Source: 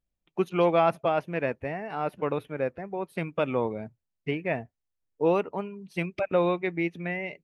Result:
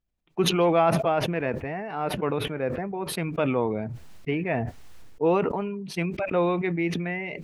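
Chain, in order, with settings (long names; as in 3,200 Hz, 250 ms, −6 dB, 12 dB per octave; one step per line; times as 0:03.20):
low-pass filter 3,600 Hz 6 dB per octave
notch filter 560 Hz, Q 12
level that may fall only so fast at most 32 dB per second
level +1.5 dB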